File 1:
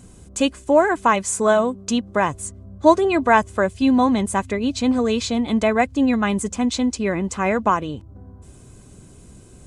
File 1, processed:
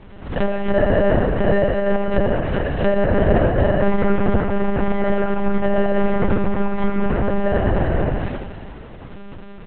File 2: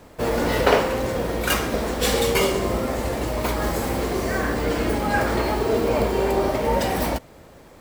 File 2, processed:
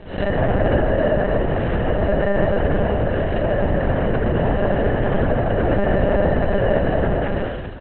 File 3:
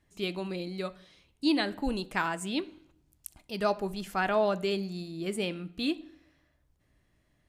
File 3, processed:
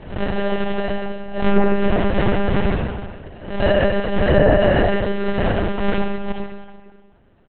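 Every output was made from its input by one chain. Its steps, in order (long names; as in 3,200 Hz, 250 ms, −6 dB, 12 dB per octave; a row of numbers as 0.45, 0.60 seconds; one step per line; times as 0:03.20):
delay that plays each chunk backwards 218 ms, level −6 dB
single-tap delay 79 ms −9 dB
treble cut that deepens with the level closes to 1,000 Hz, closed at −17.5 dBFS
parametric band 83 Hz −5 dB 0.73 octaves
downward compressor 2.5 to 1, threshold −22 dBFS
decimation without filtering 38×
comb and all-pass reverb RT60 1.5 s, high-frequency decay 0.85×, pre-delay 20 ms, DRR −1 dB
one-pitch LPC vocoder at 8 kHz 200 Hz
high-frequency loss of the air 110 metres
treble cut that deepens with the level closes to 1,700 Hz, closed at −19 dBFS
background raised ahead of every attack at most 100 dB per second
loudness normalisation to −20 LKFS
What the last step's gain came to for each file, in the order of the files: +4.5, +4.0, +11.0 decibels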